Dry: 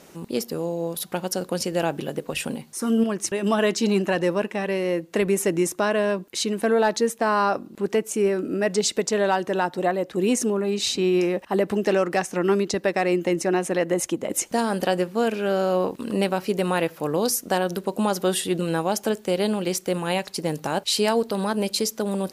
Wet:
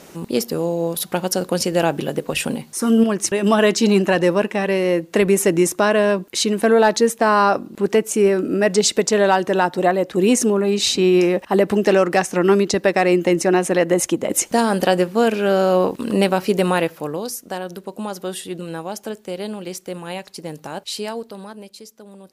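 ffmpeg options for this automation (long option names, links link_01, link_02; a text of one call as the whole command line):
ffmpeg -i in.wav -af "volume=6dB,afade=type=out:start_time=16.64:duration=0.6:silence=0.281838,afade=type=out:start_time=20.93:duration=0.79:silence=0.281838" out.wav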